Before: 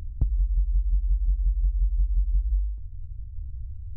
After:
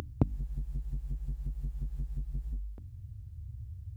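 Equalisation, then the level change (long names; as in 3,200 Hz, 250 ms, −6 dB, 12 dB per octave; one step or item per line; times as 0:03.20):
high-pass filter 240 Hz 12 dB per octave
+15.0 dB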